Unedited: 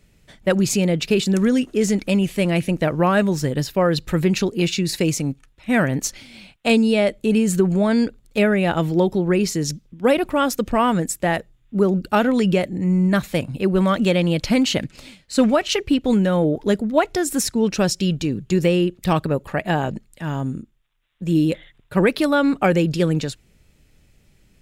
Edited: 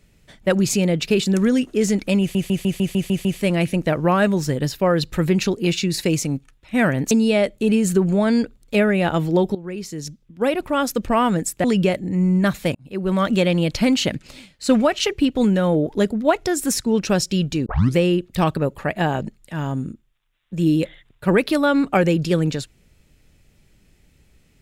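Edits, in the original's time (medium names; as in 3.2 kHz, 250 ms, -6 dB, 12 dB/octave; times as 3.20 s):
2.20 s: stutter 0.15 s, 8 plays
6.06–6.74 s: delete
9.18–10.67 s: fade in, from -16 dB
11.27–12.33 s: delete
13.44–13.95 s: fade in
18.35 s: tape start 0.30 s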